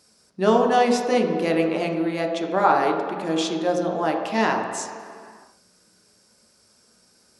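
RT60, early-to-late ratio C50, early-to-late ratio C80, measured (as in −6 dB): non-exponential decay, 4.5 dB, 5.5 dB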